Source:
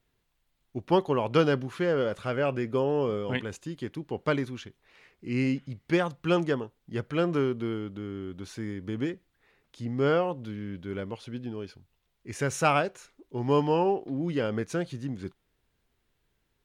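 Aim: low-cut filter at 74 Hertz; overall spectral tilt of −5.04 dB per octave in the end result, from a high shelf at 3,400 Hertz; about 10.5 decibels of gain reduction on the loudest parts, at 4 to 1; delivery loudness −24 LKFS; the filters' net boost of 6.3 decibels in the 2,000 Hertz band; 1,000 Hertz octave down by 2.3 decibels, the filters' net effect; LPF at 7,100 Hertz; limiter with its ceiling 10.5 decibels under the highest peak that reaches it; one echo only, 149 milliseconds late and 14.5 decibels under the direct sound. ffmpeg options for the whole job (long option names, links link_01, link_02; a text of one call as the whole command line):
ffmpeg -i in.wav -af "highpass=74,lowpass=7100,equalizer=frequency=1000:width_type=o:gain=-7,equalizer=frequency=2000:width_type=o:gain=8.5,highshelf=frequency=3400:gain=7.5,acompressor=threshold=-31dB:ratio=4,alimiter=level_in=3dB:limit=-24dB:level=0:latency=1,volume=-3dB,aecho=1:1:149:0.188,volume=14.5dB" out.wav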